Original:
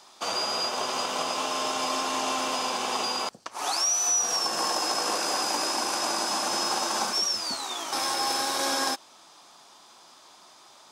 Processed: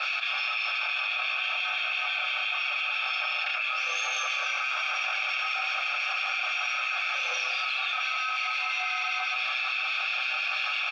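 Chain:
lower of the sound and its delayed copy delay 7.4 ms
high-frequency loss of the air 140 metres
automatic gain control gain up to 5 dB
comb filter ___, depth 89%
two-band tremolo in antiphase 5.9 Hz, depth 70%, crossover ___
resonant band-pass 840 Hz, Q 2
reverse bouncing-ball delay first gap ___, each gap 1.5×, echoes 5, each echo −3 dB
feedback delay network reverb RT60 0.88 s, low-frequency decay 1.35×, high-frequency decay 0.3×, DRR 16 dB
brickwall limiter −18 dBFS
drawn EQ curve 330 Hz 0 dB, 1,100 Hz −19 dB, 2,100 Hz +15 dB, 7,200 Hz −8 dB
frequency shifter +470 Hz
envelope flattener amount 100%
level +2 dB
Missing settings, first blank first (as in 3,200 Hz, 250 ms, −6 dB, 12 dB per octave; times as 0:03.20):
1 ms, 980 Hz, 30 ms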